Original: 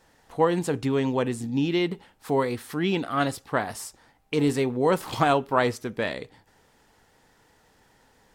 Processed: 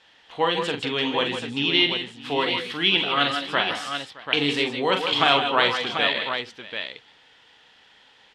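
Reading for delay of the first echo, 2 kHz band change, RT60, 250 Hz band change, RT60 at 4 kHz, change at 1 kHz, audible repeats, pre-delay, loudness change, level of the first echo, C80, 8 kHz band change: 42 ms, +9.0 dB, no reverb, -3.0 dB, no reverb, +3.0 dB, 4, no reverb, +3.0 dB, -7.0 dB, no reverb, -4.0 dB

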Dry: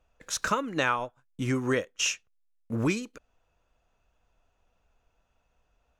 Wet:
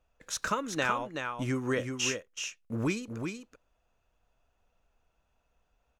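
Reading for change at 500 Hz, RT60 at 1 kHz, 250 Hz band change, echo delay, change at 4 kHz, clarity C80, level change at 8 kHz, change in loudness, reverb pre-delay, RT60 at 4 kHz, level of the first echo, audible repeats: -2.5 dB, no reverb, -2.5 dB, 377 ms, -2.5 dB, no reverb, -2.5 dB, -3.5 dB, no reverb, no reverb, -6.0 dB, 1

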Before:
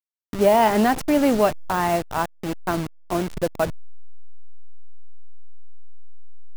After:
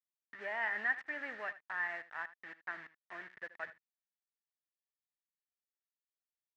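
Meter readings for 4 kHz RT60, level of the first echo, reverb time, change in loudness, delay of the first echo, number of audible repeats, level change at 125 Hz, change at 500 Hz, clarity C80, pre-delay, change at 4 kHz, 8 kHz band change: no reverb, -16.5 dB, no reverb, -18.0 dB, 78 ms, 1, -40.0 dB, -28.5 dB, no reverb, no reverb, -23.5 dB, under -35 dB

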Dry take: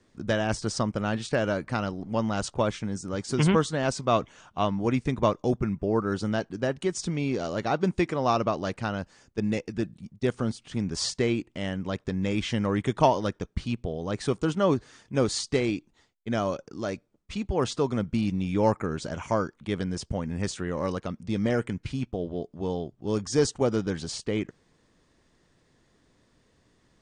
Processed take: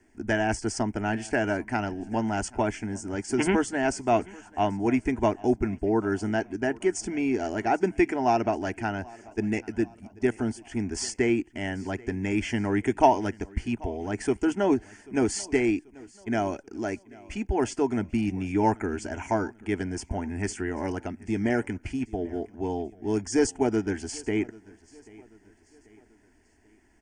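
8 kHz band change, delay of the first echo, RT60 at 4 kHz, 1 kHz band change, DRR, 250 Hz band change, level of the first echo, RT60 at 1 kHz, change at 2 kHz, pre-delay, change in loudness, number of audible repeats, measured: +1.0 dB, 787 ms, no reverb, +2.0 dB, no reverb, +1.5 dB, -23.0 dB, no reverb, +3.0 dB, no reverb, +0.5 dB, 2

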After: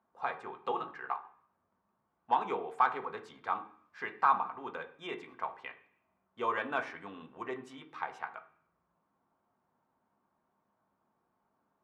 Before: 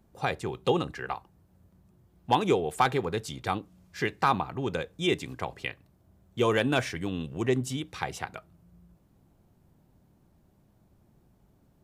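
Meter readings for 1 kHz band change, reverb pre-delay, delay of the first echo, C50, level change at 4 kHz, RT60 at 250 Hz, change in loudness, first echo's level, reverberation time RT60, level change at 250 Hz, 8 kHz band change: -2.0 dB, 3 ms, no echo, 13.5 dB, -15.5 dB, 0.65 s, -6.0 dB, no echo, 0.55 s, -16.0 dB, under -20 dB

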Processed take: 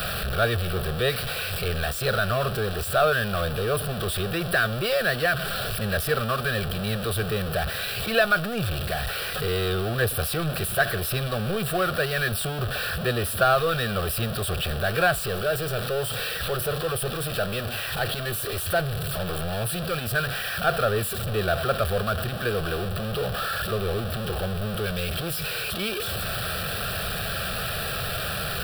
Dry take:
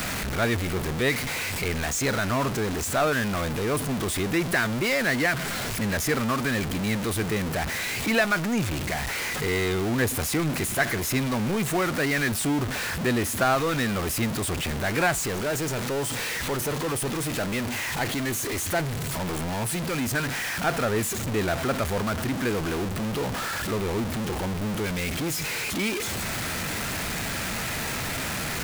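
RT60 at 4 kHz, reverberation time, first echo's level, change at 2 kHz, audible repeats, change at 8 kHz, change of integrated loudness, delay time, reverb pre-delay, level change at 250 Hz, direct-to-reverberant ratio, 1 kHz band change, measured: no reverb, no reverb, no echo, +0.5 dB, no echo, -4.5 dB, +0.5 dB, no echo, no reverb, -5.5 dB, no reverb, +1.5 dB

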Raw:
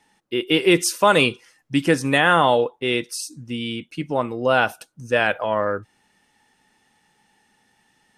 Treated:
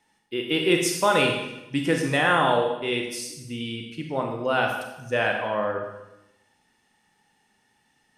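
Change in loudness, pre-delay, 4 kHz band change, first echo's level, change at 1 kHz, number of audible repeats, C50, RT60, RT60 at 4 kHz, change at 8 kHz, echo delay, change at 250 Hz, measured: -4.0 dB, 29 ms, -4.0 dB, no echo, -4.0 dB, no echo, 4.5 dB, 0.95 s, 0.85 s, -4.0 dB, no echo, -4.5 dB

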